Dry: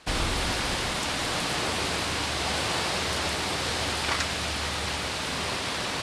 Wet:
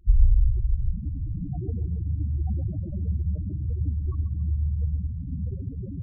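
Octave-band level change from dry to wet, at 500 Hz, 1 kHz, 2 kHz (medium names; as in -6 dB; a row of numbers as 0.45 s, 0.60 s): -15.5 dB, under -25 dB, under -40 dB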